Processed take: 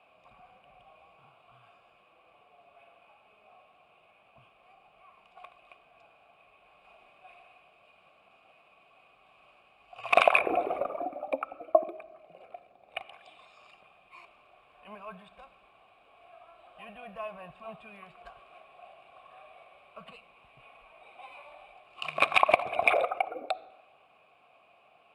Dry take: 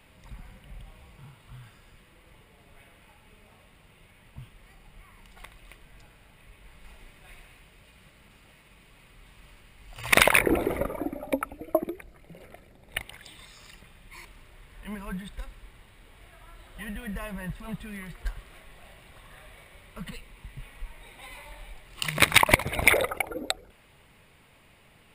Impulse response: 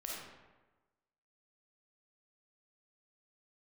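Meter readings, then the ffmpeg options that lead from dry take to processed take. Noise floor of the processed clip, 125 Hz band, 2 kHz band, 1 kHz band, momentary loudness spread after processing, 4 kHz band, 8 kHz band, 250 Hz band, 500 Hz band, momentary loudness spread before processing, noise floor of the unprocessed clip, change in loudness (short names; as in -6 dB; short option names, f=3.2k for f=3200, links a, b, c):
-63 dBFS, under -20 dB, -5.5 dB, +2.0 dB, 23 LU, -9.5 dB, under -20 dB, -12.5 dB, +0.5 dB, 24 LU, -58 dBFS, -2.5 dB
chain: -filter_complex "[0:a]asplit=3[a][b][c];[a]bandpass=f=730:t=q:w=8,volume=0dB[d];[b]bandpass=f=1.09k:t=q:w=8,volume=-6dB[e];[c]bandpass=f=2.44k:t=q:w=8,volume=-9dB[f];[d][e][f]amix=inputs=3:normalize=0,asplit=2[g][h];[1:a]atrim=start_sample=2205,lowpass=3.5k[i];[h][i]afir=irnorm=-1:irlink=0,volume=-15.5dB[j];[g][j]amix=inputs=2:normalize=0,volume=8.5dB"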